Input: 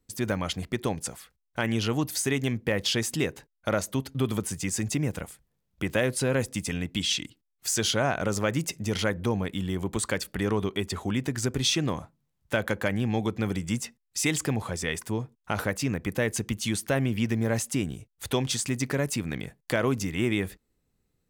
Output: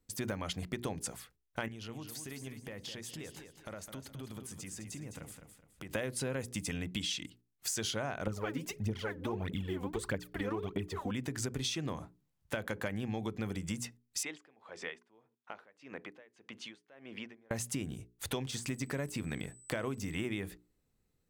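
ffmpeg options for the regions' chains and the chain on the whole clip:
-filter_complex "[0:a]asettb=1/sr,asplit=3[a][b][c];[a]atrim=end=1.684[d];[b]atrim=start=1.68:end=5.91,asetpts=PTS-STARTPTS,afade=t=in:d=0.004:c=qsin,afade=t=out:st=4.226:d=0.004:c=qsin,acompressor=threshold=-41dB:ratio=4:attack=3.2:release=140:knee=1:detection=peak,aecho=1:1:209|418|627|836:0.376|0.124|0.0409|0.0135,atrim=end_sample=186543[e];[c]atrim=start=5.906[f];[d][e]acrossfade=d=0.004:c1=hsin:c2=qsin[g];[g][f]acrossfade=d=0.004:c1=qsin:c2=hsin,asettb=1/sr,asplit=3[h][i][j];[h]atrim=end=8.274[k];[i]atrim=start=8.27:end=11.11,asetpts=PTS-STARTPTS,afade=t=in:d=0.004:c=qsin,afade=t=out:st=2.836:d=0.004:c=qsin,equalizer=f=8.3k:w=0.47:g=-11,aphaser=in_gain=1:out_gain=1:delay=4.2:decay=0.74:speed=1.6:type=triangular[l];[j]atrim=start=11.106[m];[k][l]acrossfade=d=0.004:c1=hsin:c2=qsin[n];[n][m]acrossfade=d=0.004:c1=qsin:c2=hsin,asettb=1/sr,asplit=3[o][p][q];[o]atrim=end=14.234[r];[p]atrim=start=14.23:end=17.51,asetpts=PTS-STARTPTS,afade=t=in:d=0.004:c=qsin,afade=t=out:st=3.276:d=0.004:c=qsin,acompressor=threshold=-31dB:ratio=1.5:attack=3.2:release=140:knee=1:detection=peak,highpass=390,lowpass=3.2k,aeval=exprs='val(0)*pow(10,-26*(0.5-0.5*cos(2*PI*1.7*n/s))/20)':c=same[s];[q]atrim=start=17.506[t];[r][s]acrossfade=d=0.004:c1=hsin:c2=qsin[u];[u][t]acrossfade=d=0.004:c1=qsin:c2=hsin,asettb=1/sr,asplit=3[v][w][x];[v]atrim=end=18.474[y];[w]atrim=start=18.47:end=20.24,asetpts=PTS-STARTPTS,afade=t=in:d=0.004:c=qsin,afade=t=out:st=1.766:d=0.004:c=qsin,deesser=0.65,aeval=exprs='val(0)+0.00224*sin(2*PI*8000*n/s)':c=same[z];[x]atrim=start=20.236[aa];[y][z]acrossfade=d=0.004:c1=hsin:c2=qsin[ab];[ab][aa]acrossfade=d=0.004:c1=qsin:c2=hsin,bandreject=f=60:t=h:w=6,bandreject=f=120:t=h:w=6,bandreject=f=180:t=h:w=6,bandreject=f=240:t=h:w=6,bandreject=f=300:t=h:w=6,bandreject=f=360:t=h:w=6,bandreject=f=420:t=h:w=6,acompressor=threshold=-30dB:ratio=6,volume=-3dB"

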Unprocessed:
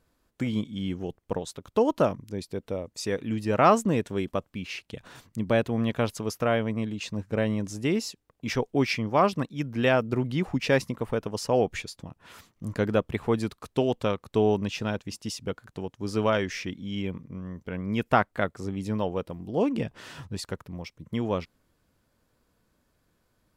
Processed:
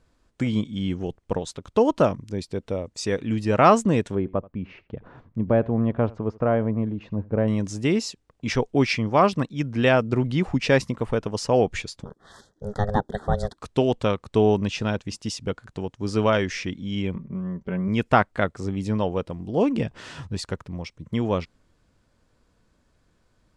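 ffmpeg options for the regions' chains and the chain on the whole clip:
-filter_complex "[0:a]asettb=1/sr,asplit=3[a][b][c];[a]atrim=end=4.154[d];[b]atrim=start=4.15:end=7.48,asetpts=PTS-STARTPTS,afade=t=in:d=0.004:c=qsin,afade=t=out:st=3.326:d=0.004:c=qsin,lowpass=1.1k,aecho=1:1:82:0.075,atrim=end_sample=146853[e];[c]atrim=start=7.476[f];[d][e]acrossfade=d=0.004:c1=hsin:c2=qsin[g];[g][f]acrossfade=d=0.004:c1=qsin:c2=hsin,asettb=1/sr,asplit=3[h][i][j];[h]atrim=end=12.044[k];[i]atrim=start=12.04:end=13.57,asetpts=PTS-STARTPTS,afade=t=in:d=0.004:c=qsin,afade=t=out:st=1.526:d=0.004:c=qsin,aeval=exprs='val(0)*sin(2*PI*310*n/s)':c=same,asuperstop=centerf=2500:order=12:qfactor=1.9[l];[j]atrim=start=13.566[m];[k][l]acrossfade=d=0.004:c1=hsin:c2=qsin[n];[n][m]acrossfade=d=0.004:c1=qsin:c2=hsin,asettb=1/sr,asplit=3[o][p][q];[o]atrim=end=17.154[r];[p]atrim=start=17.15:end=17.88,asetpts=PTS-STARTPTS,afade=t=in:d=0.004:c=qsin,afade=t=out:st=0.726:d=0.004:c=qsin,lowpass=f=1.5k:p=1,aecho=1:1:5.2:0.73,atrim=end_sample=32193[s];[q]atrim=start=17.876[t];[r][s]acrossfade=d=0.004:c1=hsin:c2=qsin[u];[u][t]acrossfade=d=0.004:c1=qsin:c2=hsin,lowpass=f=9k:w=0.5412,lowpass=f=9k:w=1.3066,lowshelf=f=69:g=7,volume=3.5dB"

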